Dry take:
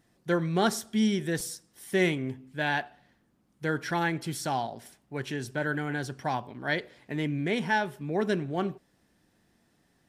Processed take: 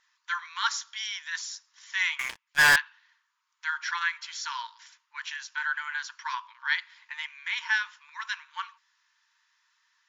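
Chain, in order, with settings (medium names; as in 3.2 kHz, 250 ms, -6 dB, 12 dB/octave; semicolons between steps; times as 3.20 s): brick-wall FIR band-pass 890–7300 Hz; 2.19–2.76 s: waveshaping leveller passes 5; trim +4 dB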